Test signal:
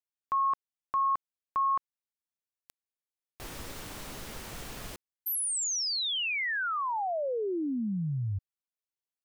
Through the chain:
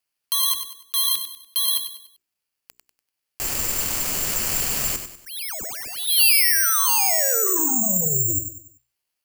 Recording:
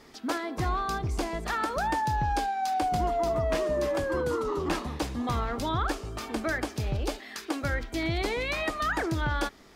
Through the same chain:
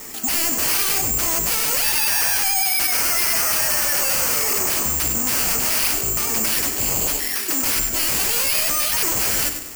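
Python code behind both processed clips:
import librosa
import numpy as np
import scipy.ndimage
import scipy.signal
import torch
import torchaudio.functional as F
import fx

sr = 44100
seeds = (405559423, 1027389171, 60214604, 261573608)

p1 = scipy.signal.sosfilt(scipy.signal.butter(4, 9500.0, 'lowpass', fs=sr, output='sos'), x)
p2 = fx.hum_notches(p1, sr, base_hz=60, count=7)
p3 = fx.vibrato(p2, sr, rate_hz=8.8, depth_cents=48.0)
p4 = fx.rider(p3, sr, range_db=5, speed_s=2.0)
p5 = p3 + F.gain(torch.from_numpy(p4), -1.5).numpy()
p6 = fx.fold_sine(p5, sr, drive_db=17, ceiling_db=-9.5)
p7 = fx.high_shelf_res(p6, sr, hz=3700.0, db=-8.5, q=3.0)
p8 = p7 + fx.echo_feedback(p7, sr, ms=97, feedback_pct=39, wet_db=-9.0, dry=0)
p9 = (np.kron(p8[::6], np.eye(6)[0]) * 6)[:len(p8)]
y = F.gain(torch.from_numpy(p9), -17.0).numpy()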